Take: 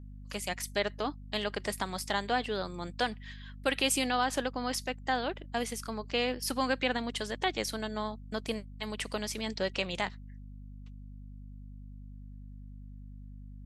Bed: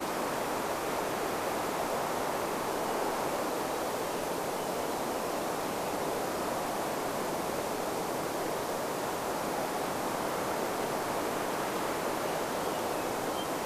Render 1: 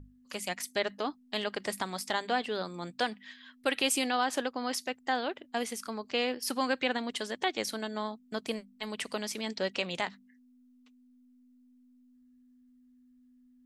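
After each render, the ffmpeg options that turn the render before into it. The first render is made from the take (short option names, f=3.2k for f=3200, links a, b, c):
-af "bandreject=f=50:t=h:w=6,bandreject=f=100:t=h:w=6,bandreject=f=150:t=h:w=6,bandreject=f=200:t=h:w=6"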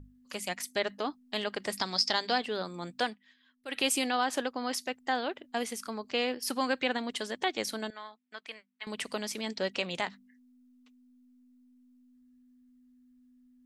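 -filter_complex "[0:a]asettb=1/sr,asplit=3[a][b][c];[a]atrim=end=1.774[d];[b]atrim=start=1.77:end=2.38,asetpts=PTS-STARTPTS,afade=t=in:d=0.004:c=qsin,afade=t=out:st=0.606:d=0.004:c=qsin,lowpass=f=5.1k:t=q:w=9.1[e];[c]atrim=start=2.376[f];[d][e]acrossfade=d=0.004:c1=hsin:c2=qsin[g];[g][f]acrossfade=d=0.004:c1=qsin:c2=hsin,asettb=1/sr,asplit=3[h][i][j];[h]atrim=end=7.904[k];[i]atrim=start=7.9:end=8.87,asetpts=PTS-STARTPTS,afade=t=in:d=0.004:c=qsin,afade=t=out:st=0.966:d=0.004:c=qsin,bandpass=f=2k:t=q:w=1.4[l];[j]atrim=start=8.866[m];[k][l]acrossfade=d=0.004:c1=hsin:c2=qsin[n];[n][m]acrossfade=d=0.004:c1=qsin:c2=hsin,asplit=3[o][p][q];[o]atrim=end=3.17,asetpts=PTS-STARTPTS,afade=t=out:st=3.04:d=0.13:c=qsin:silence=0.199526[r];[p]atrim=start=3.17:end=3.68,asetpts=PTS-STARTPTS,volume=-14dB[s];[q]atrim=start=3.68,asetpts=PTS-STARTPTS,afade=t=in:d=0.13:c=qsin:silence=0.199526[t];[r][s][t]concat=n=3:v=0:a=1"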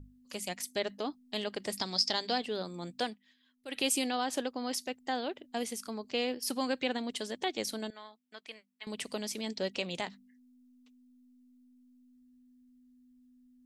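-af "equalizer=f=1.4k:w=0.78:g=-7.5"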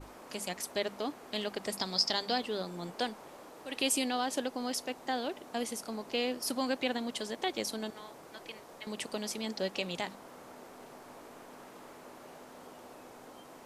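-filter_complex "[1:a]volume=-18.5dB[a];[0:a][a]amix=inputs=2:normalize=0"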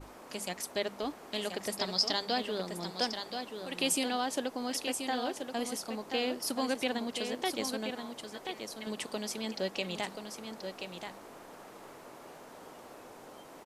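-af "aecho=1:1:1030:0.447"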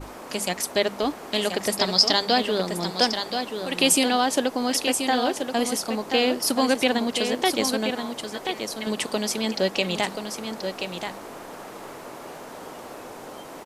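-af "volume=11dB"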